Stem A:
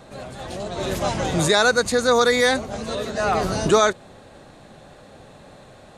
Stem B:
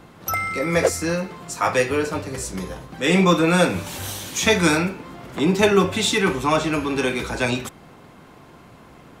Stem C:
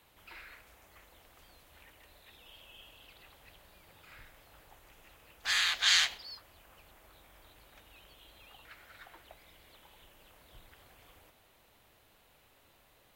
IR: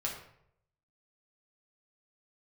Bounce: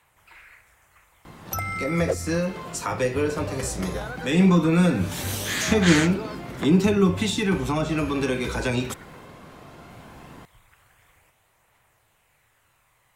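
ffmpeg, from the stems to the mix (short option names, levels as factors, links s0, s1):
-filter_complex "[0:a]lowpass=2400,acompressor=threshold=0.112:ratio=6,adelay=2450,volume=0.188[s0];[1:a]acrossover=split=350[s1][s2];[s2]acompressor=threshold=0.0355:ratio=5[s3];[s1][s3]amix=inputs=2:normalize=0,adelay=1250,volume=1.19[s4];[2:a]equalizer=f=125:t=o:w=1:g=8,equalizer=f=250:t=o:w=1:g=-5,equalizer=f=1000:t=o:w=1:g=6,equalizer=f=2000:t=o:w=1:g=8,equalizer=f=4000:t=o:w=1:g=-5,equalizer=f=8000:t=o:w=1:g=10,volume=0.596,asplit=3[s5][s6][s7];[s5]atrim=end=9.26,asetpts=PTS-STARTPTS,afade=t=out:st=9.256:d=0.004:c=hsin[s8];[s6]atrim=start=9.26:end=9.9,asetpts=PTS-STARTPTS,volume=0[s9];[s7]atrim=start=9.9,asetpts=PTS-STARTPTS,afade=t=in:d=0.004:c=hsin[s10];[s8][s9][s10]concat=n=3:v=0:a=1[s11];[s0][s4][s11]amix=inputs=3:normalize=0,aphaser=in_gain=1:out_gain=1:delay=2.2:decay=0.23:speed=0.17:type=triangular"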